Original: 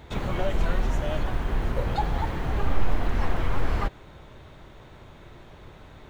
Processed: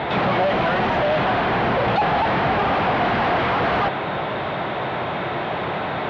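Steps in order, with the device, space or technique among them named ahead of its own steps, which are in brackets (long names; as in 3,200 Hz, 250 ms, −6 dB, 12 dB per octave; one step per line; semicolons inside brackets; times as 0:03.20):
overdrive pedal into a guitar cabinet (mid-hump overdrive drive 42 dB, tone 2,300 Hz, clips at −8.5 dBFS; loudspeaker in its box 79–3,800 Hz, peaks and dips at 130 Hz +5 dB, 190 Hz +6 dB, 720 Hz +6 dB)
level −5 dB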